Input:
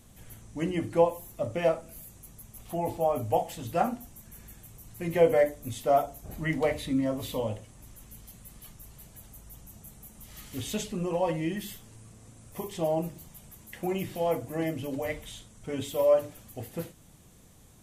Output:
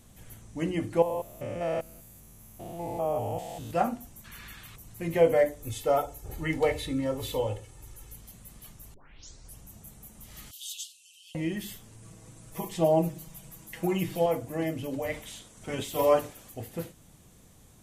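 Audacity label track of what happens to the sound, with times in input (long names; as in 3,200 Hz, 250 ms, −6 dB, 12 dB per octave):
1.020000	3.710000	spectrum averaged block by block every 200 ms
4.240000	4.760000	flat-topped bell 2,200 Hz +14 dB 2.5 octaves
5.590000	8.160000	comb filter 2.3 ms
8.940000	8.940000	tape start 0.67 s
10.510000	11.350000	Butterworth high-pass 2,900 Hz 72 dB per octave
12.020000	14.260000	comb filter 6.2 ms, depth 90%
15.120000	16.530000	ceiling on every frequency bin ceiling under each frame's peak by 12 dB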